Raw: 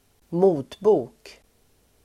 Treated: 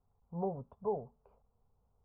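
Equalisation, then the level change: low-pass 1.2 kHz 24 dB/octave; peaking EQ 620 Hz -8.5 dB 0.36 oct; static phaser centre 780 Hz, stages 4; -8.5 dB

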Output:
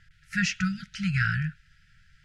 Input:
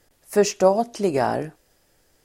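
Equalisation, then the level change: brick-wall FIR band-stop 190–1300 Hz; low-pass 2.7 kHz 12 dB/octave; +8.0 dB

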